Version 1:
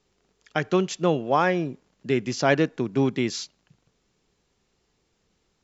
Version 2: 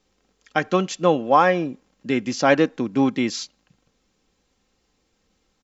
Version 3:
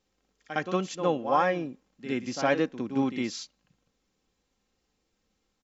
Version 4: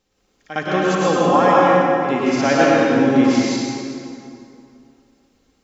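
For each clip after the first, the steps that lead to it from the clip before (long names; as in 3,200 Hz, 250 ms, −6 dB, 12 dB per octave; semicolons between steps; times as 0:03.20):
comb filter 3.8 ms, depth 45%; dynamic equaliser 980 Hz, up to +4 dB, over −30 dBFS, Q 0.87; level +1.5 dB
backwards echo 59 ms −9.5 dB; level −8.5 dB
dense smooth reverb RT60 2.6 s, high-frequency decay 0.7×, pre-delay 90 ms, DRR −6.5 dB; level +5.5 dB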